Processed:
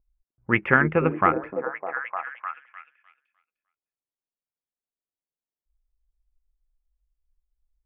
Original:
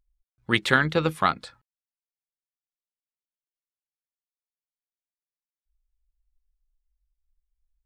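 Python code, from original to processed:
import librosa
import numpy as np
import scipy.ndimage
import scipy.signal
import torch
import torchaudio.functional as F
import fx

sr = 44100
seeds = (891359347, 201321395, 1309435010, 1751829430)

y = fx.env_lowpass(x, sr, base_hz=770.0, full_db=-22.5)
y = scipy.signal.sosfilt(scipy.signal.ellip(4, 1.0, 40, 2500.0, 'lowpass', fs=sr, output='sos'), y)
y = fx.echo_stepped(y, sr, ms=303, hz=330.0, octaves=0.7, feedback_pct=70, wet_db=-2.5)
y = y * 10.0 ** (2.5 / 20.0)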